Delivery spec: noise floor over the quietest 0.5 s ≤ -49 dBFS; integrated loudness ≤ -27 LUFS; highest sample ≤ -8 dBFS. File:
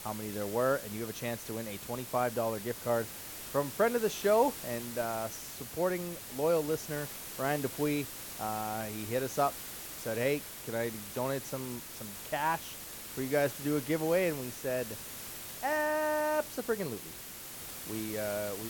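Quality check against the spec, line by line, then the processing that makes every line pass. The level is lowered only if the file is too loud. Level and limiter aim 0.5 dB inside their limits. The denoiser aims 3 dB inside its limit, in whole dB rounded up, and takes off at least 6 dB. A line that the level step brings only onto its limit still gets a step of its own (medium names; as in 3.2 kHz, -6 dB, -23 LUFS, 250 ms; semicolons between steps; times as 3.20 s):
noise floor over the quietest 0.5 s -45 dBFS: fail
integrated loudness -33.5 LUFS: pass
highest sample -14.5 dBFS: pass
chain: noise reduction 7 dB, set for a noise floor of -45 dBFS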